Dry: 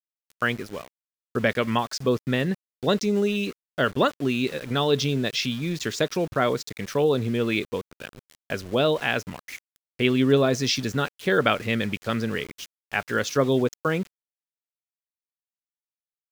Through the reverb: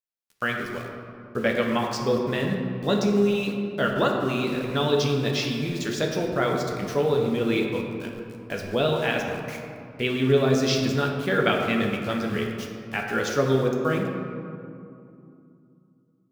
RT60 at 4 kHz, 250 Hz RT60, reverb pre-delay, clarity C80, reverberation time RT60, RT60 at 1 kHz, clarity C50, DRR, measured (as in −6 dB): 1.2 s, 3.7 s, 5 ms, 4.0 dB, 2.7 s, 2.6 s, 3.0 dB, 0.0 dB